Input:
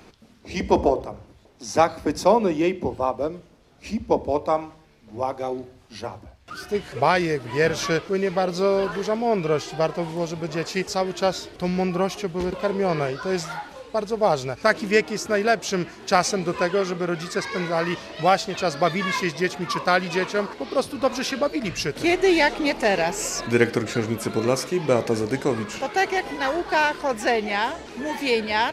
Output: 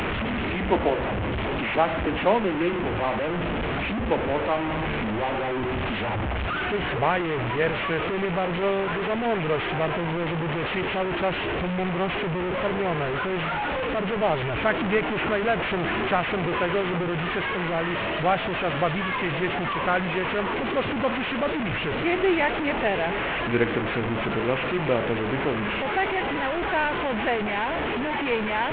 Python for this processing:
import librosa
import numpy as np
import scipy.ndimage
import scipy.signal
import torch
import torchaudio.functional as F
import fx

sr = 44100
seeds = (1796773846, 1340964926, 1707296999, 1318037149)

y = fx.delta_mod(x, sr, bps=16000, step_db=-16.5)
y = fx.band_squash(y, sr, depth_pct=40, at=(14.8, 17.04))
y = y * librosa.db_to_amplitude(-4.0)